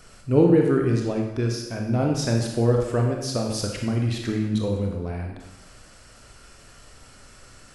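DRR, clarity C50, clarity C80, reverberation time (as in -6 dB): 0.5 dB, 3.0 dB, 5.5 dB, 1.0 s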